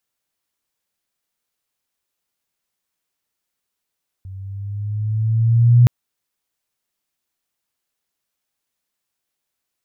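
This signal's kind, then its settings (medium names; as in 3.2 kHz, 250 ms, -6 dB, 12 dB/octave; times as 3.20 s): gliding synth tone sine, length 1.62 s, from 94.2 Hz, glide +4.5 st, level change +25 dB, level -6 dB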